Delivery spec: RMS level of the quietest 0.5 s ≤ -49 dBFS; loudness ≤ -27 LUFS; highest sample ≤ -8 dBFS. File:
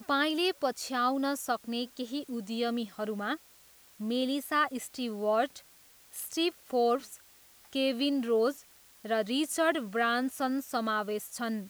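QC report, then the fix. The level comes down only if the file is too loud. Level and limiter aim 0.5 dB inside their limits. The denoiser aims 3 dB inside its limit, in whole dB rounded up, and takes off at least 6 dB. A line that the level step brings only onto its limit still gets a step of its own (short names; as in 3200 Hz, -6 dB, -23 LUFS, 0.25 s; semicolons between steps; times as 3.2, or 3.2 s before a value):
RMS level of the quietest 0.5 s -59 dBFS: OK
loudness -31.0 LUFS: OK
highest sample -14.0 dBFS: OK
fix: none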